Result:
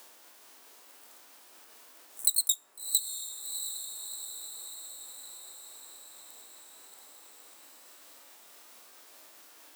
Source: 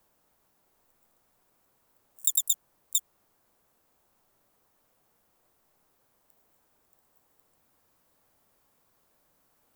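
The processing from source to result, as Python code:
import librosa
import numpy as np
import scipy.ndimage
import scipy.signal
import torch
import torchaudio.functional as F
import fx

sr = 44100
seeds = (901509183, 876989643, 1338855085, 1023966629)

y = fx.pitch_ramps(x, sr, semitones=3.0, every_ms=349)
y = fx.lowpass(y, sr, hz=3300.0, slope=6)
y = fx.hpss(y, sr, part='harmonic', gain_db=8)
y = scipy.signal.sosfilt(scipy.signal.butter(4, 260.0, 'highpass', fs=sr, output='sos'), y)
y = fx.high_shelf(y, sr, hz=2100.0, db=10.5)
y = fx.echo_diffused(y, sr, ms=682, feedback_pct=52, wet_db=-11)
y = fx.rev_fdn(y, sr, rt60_s=0.44, lf_ratio=1.0, hf_ratio=0.75, size_ms=20.0, drr_db=19.0)
y = fx.band_squash(y, sr, depth_pct=40)
y = y * 10.0 ** (6.5 / 20.0)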